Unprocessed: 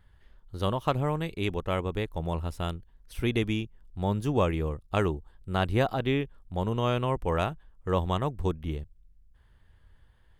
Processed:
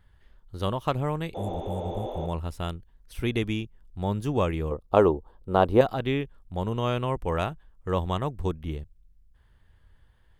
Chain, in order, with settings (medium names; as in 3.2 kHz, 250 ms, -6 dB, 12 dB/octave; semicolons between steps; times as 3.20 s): 1.37–2.23 s: spectral replace 230–6800 Hz after; 4.71–5.81 s: graphic EQ 125/250/500/1000/2000/8000 Hz -3/+4/+10/+8/-7/-7 dB